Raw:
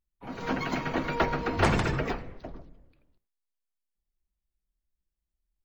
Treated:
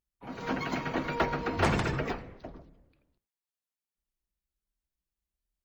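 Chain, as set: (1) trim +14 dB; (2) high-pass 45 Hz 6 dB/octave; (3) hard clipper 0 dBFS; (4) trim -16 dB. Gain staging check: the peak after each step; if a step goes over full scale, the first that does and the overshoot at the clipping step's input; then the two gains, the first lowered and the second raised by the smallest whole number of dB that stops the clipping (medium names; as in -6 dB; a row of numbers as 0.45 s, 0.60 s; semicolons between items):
+5.0 dBFS, +4.5 dBFS, 0.0 dBFS, -16.0 dBFS; step 1, 4.5 dB; step 1 +9 dB, step 4 -11 dB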